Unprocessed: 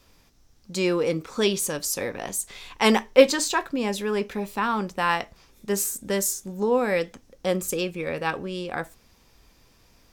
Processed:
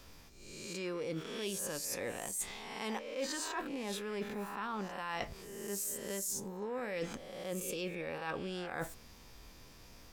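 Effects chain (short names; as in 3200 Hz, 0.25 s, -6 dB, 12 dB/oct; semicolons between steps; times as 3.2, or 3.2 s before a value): spectral swells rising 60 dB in 0.64 s; reverse; compressor 12:1, threshold -36 dBFS, peak gain reduction 28.5 dB; reverse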